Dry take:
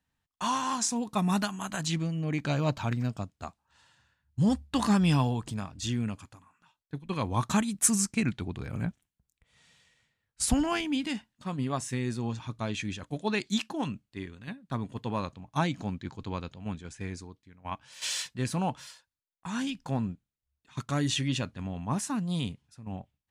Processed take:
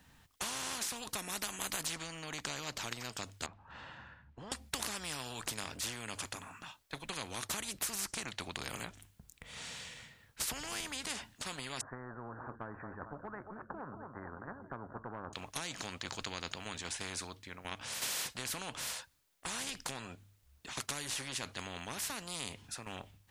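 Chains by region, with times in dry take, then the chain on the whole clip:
3.46–4.52 LPF 1900 Hz + compressor 2:1, threshold -52 dBFS
11.81–15.33 steep low-pass 1500 Hz 72 dB/oct + feedback echo 0.224 s, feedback 57%, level -21 dB
whole clip: notches 50/100 Hz; compressor 6:1, threshold -34 dBFS; spectral compressor 4:1; gain +7 dB

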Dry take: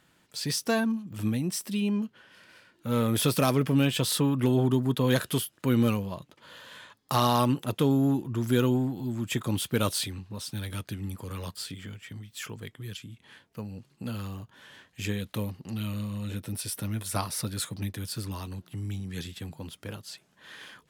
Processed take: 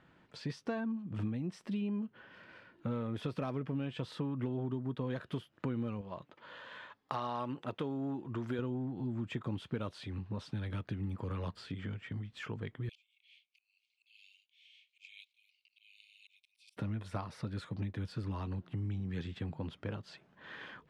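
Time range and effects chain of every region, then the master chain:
6.01–8.59 low shelf 290 Hz -11 dB + companded quantiser 8-bit
12.89–16.77 Chebyshev high-pass 2200 Hz, order 8 + auto swell 0.293 s
whole clip: compressor 6:1, threshold -36 dBFS; Bessel low-pass 1800 Hz, order 2; gain +2 dB

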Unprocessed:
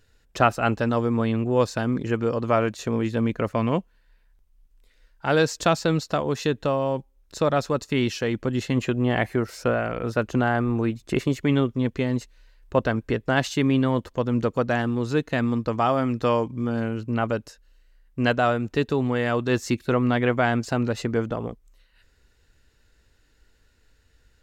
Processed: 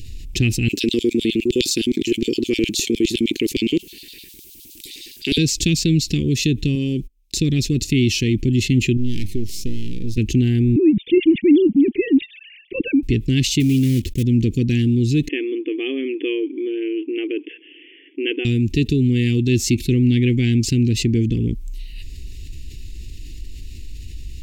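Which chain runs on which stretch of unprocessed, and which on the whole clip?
0.68–5.38 high shelf 7200 Hz +10.5 dB + LFO high-pass square 9.7 Hz 360–3700 Hz
6.75–7.38 gate -51 dBFS, range -46 dB + bell 69 Hz -12.5 dB 2.1 oct + mismatched tape noise reduction encoder only
8.97–10.18 half-wave gain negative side -12 dB + band shelf 1600 Hz -8.5 dB + resonator 100 Hz, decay 0.2 s, mix 40%
10.76–13.03 sine-wave speech + low shelf 350 Hz +11.5 dB
13.6–14.25 block floating point 5-bit + core saturation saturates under 580 Hz
15.28–18.45 brick-wall FIR band-pass 280–3500 Hz + air absorption 260 m
whole clip: elliptic band-stop 350–2400 Hz, stop band 40 dB; low shelf 120 Hz +9.5 dB; fast leveller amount 50%

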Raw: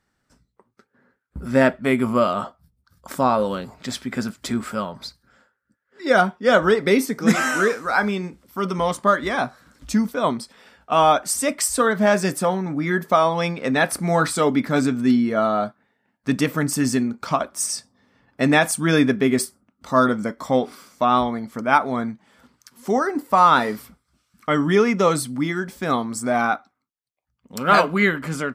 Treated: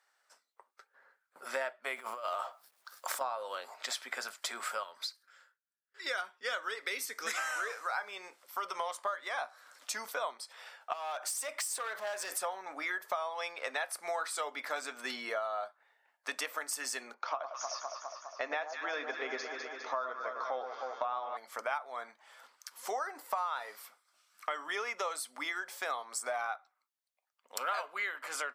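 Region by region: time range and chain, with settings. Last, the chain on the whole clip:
1.96–3.21 G.711 law mismatch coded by mu + negative-ratio compressor -24 dBFS, ratio -0.5
4.83–7.38 gate with hold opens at -50 dBFS, closes at -56 dBFS + bell 720 Hz -12.5 dB 1.2 oct
10.93–12.32 compressor 5:1, threshold -26 dBFS + overloaded stage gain 26 dB
17.14–21.37 brick-wall FIR band-pass 210–6900 Hz + high shelf 2800 Hz -11.5 dB + echo with dull and thin repeats by turns 0.102 s, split 1200 Hz, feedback 80%, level -9 dB
whole clip: HPF 610 Hz 24 dB/oct; compressor 6:1, threshold -34 dBFS

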